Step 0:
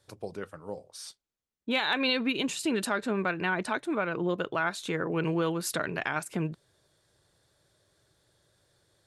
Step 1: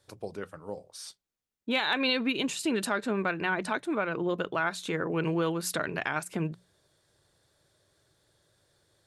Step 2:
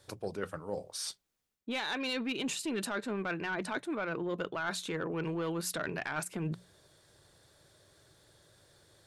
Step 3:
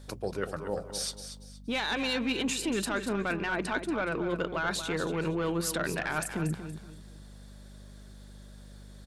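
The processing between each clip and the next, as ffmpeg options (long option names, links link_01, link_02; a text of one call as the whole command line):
ffmpeg -i in.wav -af "bandreject=frequency=60:width_type=h:width=6,bandreject=frequency=120:width_type=h:width=6,bandreject=frequency=180:width_type=h:width=6" out.wav
ffmpeg -i in.wav -af "asoftclip=type=tanh:threshold=-21dB,areverse,acompressor=threshold=-39dB:ratio=6,areverse,volume=6dB" out.wav
ffmpeg -i in.wav -af "aeval=exprs='val(0)+0.00282*(sin(2*PI*50*n/s)+sin(2*PI*2*50*n/s)/2+sin(2*PI*3*50*n/s)/3+sin(2*PI*4*50*n/s)/4+sin(2*PI*5*50*n/s)/5)':channel_layout=same,aecho=1:1:235|470|705:0.316|0.0949|0.0285,volume=4dB" out.wav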